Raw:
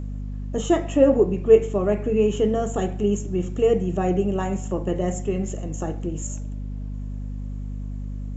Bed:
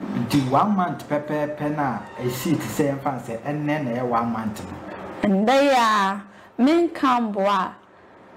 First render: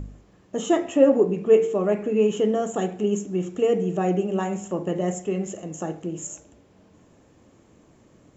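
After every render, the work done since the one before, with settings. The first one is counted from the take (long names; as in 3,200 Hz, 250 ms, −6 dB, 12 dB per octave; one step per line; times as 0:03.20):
hum removal 50 Hz, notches 9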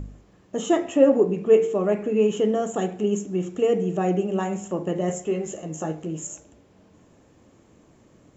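0:05.08–0:06.20: double-tracking delay 13 ms −5.5 dB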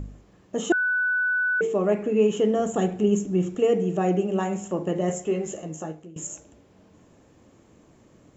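0:00.72–0:01.61: beep over 1,490 Hz −20.5 dBFS
0:02.59–0:03.55: low-shelf EQ 130 Hz +12 dB
0:05.57–0:06.16: fade out, to −19.5 dB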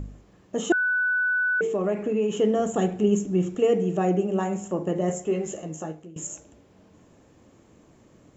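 0:01.43–0:02.34: downward compressor 3 to 1, threshold −21 dBFS
0:04.05–0:05.33: parametric band 3,200 Hz −3.5 dB 1.7 octaves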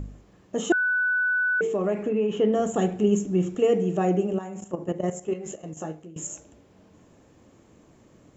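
0:02.09–0:02.53: low-pass filter 3,600 Hz
0:04.33–0:05.77: output level in coarse steps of 12 dB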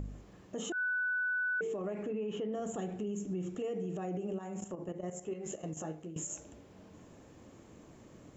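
downward compressor 2 to 1, threshold −38 dBFS, peak gain reduction 12 dB
brickwall limiter −30 dBFS, peak gain reduction 8.5 dB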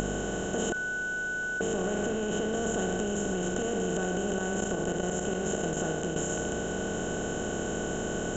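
compressor on every frequency bin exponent 0.2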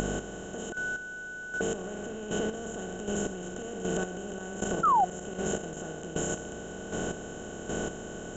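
square-wave tremolo 1.3 Hz, depth 60%, duty 25%
0:04.83–0:05.05: sound drawn into the spectrogram fall 700–1,400 Hz −22 dBFS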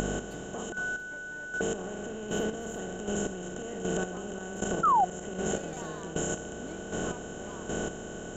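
mix in bed −29 dB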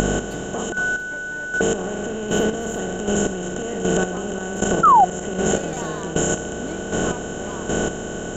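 level +11 dB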